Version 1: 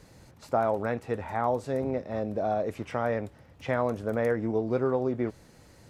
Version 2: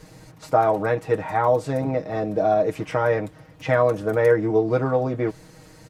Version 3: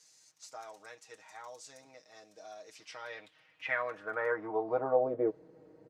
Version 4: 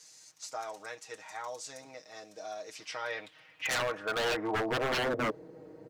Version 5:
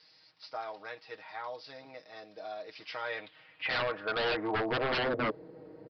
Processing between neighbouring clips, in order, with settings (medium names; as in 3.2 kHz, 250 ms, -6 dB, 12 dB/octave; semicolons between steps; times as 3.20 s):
comb 6.4 ms, depth 83%; trim +5.5 dB
band-pass sweep 6.3 kHz -> 410 Hz, 2.61–5.42 s; trim -2 dB
wavefolder -32.5 dBFS; trim +7.5 dB
resampled via 11.025 kHz